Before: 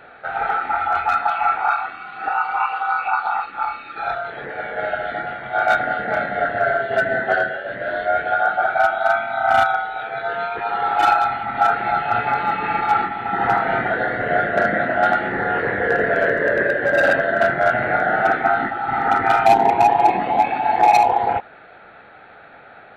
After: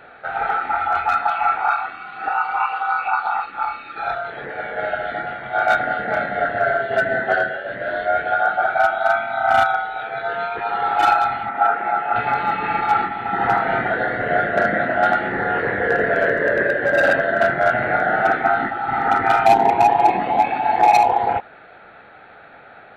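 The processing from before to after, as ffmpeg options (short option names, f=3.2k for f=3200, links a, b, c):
-filter_complex "[0:a]asettb=1/sr,asplit=3[a][b][c];[a]atrim=end=11.494[d];[b]atrim=start=11.49:end=12.16,asetpts=PTS-STARTPTS,afade=t=in:d=0.004:c=qsin,afade=t=out:st=0.666:d=0.004:c=qsin,highpass=270,lowpass=2k[e];[c]atrim=start=12.156[f];[d][e]acrossfade=d=0.004:c1=hsin:c2=qsin[g];[g][f]acrossfade=d=0.004:c1=qsin:c2=hsin"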